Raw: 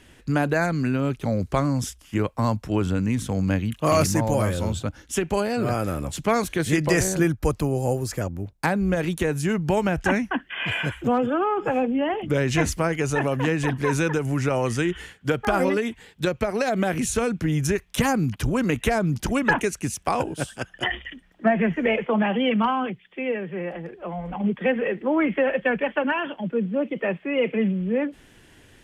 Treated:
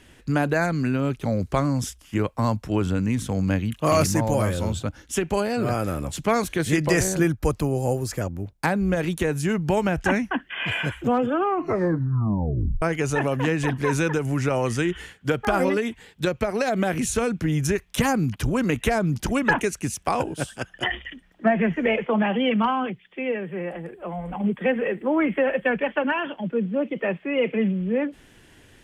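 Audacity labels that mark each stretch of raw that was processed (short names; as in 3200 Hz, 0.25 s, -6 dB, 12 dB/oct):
11.420000	11.420000	tape stop 1.40 s
23.440000	25.660000	resonant high shelf 7100 Hz +7 dB, Q 3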